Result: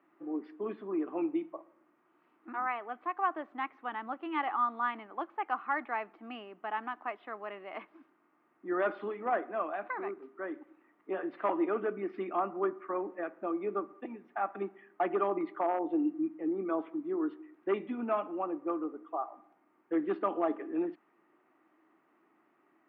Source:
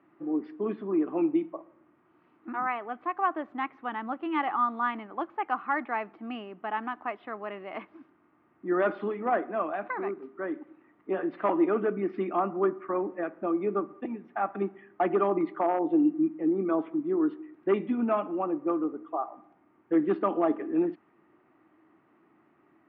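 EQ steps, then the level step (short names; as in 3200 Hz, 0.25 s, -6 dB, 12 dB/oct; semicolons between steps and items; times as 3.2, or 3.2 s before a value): HPF 170 Hz; low shelf 220 Hz -10.5 dB; -3.0 dB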